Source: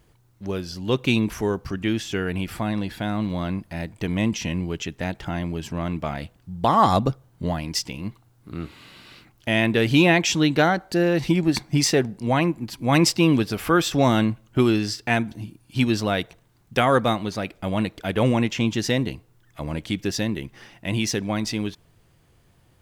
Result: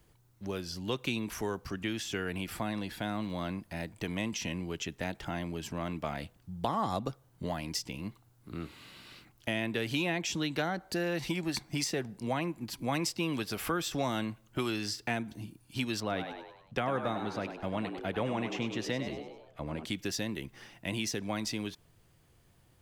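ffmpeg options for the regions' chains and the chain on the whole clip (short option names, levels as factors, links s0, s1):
-filter_complex "[0:a]asettb=1/sr,asplit=3[s0][s1][s2];[s0]atrim=end=16.004[s3];[s1]atrim=start=16:end=19.85,asetpts=PTS-STARTPTS,afade=t=in:d=0.004:c=qsin,afade=t=out:st=3.846:d=0.004:c=qsin,lowpass=f=2000:p=1,asplit=6[s4][s5][s6][s7][s8][s9];[s5]adelay=99,afreqshift=78,volume=0.335[s10];[s6]adelay=198,afreqshift=156,volume=0.164[s11];[s7]adelay=297,afreqshift=234,volume=0.0804[s12];[s8]adelay=396,afreqshift=312,volume=0.0394[s13];[s9]adelay=495,afreqshift=390,volume=0.0193[s14];[s4][s10][s11][s12][s13][s14]amix=inputs=6:normalize=0,atrim=end_sample=169785[s15];[s2]atrim=start=19.846[s16];[s3][s15]acrossfade=d=0.004:c1=hsin:c2=qsin[s17];[s17][s16]acrossfade=d=0.004:c1=qsin:c2=hsin,highshelf=f=5800:g=4.5,acrossover=split=200|610[s18][s19][s20];[s18]acompressor=threshold=0.0158:ratio=4[s21];[s19]acompressor=threshold=0.0316:ratio=4[s22];[s20]acompressor=threshold=0.0447:ratio=4[s23];[s21][s22][s23]amix=inputs=3:normalize=0,volume=0.501"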